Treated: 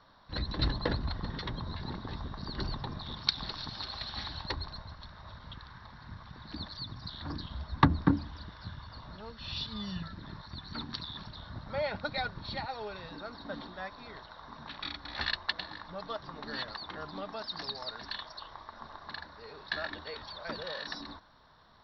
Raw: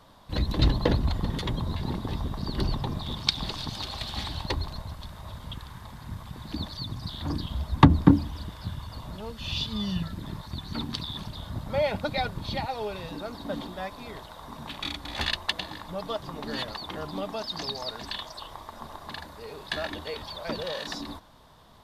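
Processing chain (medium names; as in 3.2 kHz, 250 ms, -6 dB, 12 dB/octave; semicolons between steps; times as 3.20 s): rippled Chebyshev low-pass 5.7 kHz, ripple 9 dB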